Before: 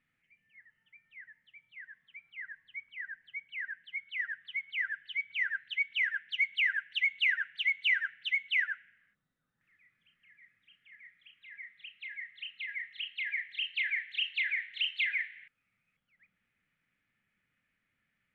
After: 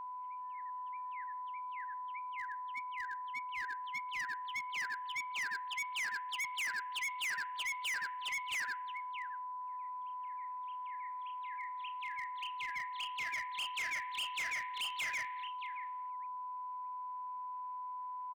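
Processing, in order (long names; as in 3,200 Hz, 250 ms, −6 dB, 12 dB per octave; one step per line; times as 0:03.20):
steady tone 1,000 Hz −39 dBFS
single-tap delay 624 ms −16 dB
hard clipping −32.5 dBFS, distortion −7 dB
level −2.5 dB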